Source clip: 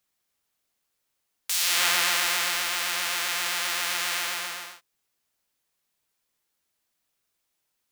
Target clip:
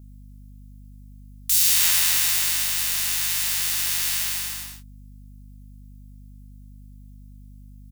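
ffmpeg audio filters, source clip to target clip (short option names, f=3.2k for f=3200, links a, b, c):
-filter_complex "[0:a]asplit=2[a][b];[b]adelay=24,volume=-3.5dB[c];[a][c]amix=inputs=2:normalize=0,crystalizer=i=9:c=0,aeval=exprs='val(0)+0.0398*(sin(2*PI*50*n/s)+sin(2*PI*2*50*n/s)/2+sin(2*PI*3*50*n/s)/3+sin(2*PI*4*50*n/s)/4+sin(2*PI*5*50*n/s)/5)':c=same,volume=-15dB"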